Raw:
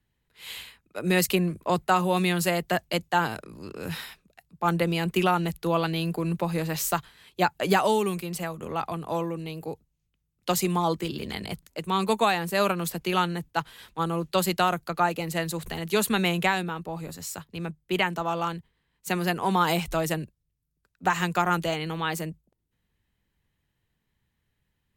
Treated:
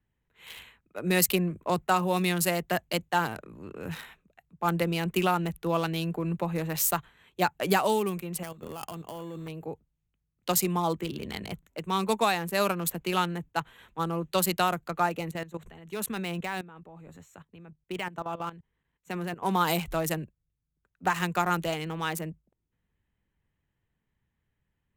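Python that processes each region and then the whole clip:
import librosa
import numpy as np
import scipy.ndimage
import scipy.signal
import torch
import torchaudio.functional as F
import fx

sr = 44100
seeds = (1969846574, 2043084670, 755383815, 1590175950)

y = fx.chain(x, sr, fx.level_steps(step_db=12),
    fx.sample_hold(seeds[0], rate_hz=3900.0, jitter_pct=0), at=(8.43, 9.48))
y = fx.chain(y, sr, fx.level_steps(step_db=15),
    fx.resample_linear(factor=2), at=(15.31, 19.45))
y = fx.wiener(y, sr, points=9)
y = fx.high_shelf(y, sr, hz=6700.0, db=9.5)
y = y * 10.0 ** (-2.5 / 20.0)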